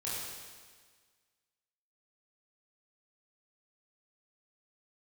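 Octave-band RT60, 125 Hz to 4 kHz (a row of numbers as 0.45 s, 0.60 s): 1.5 s, 1.6 s, 1.6 s, 1.6 s, 1.6 s, 1.6 s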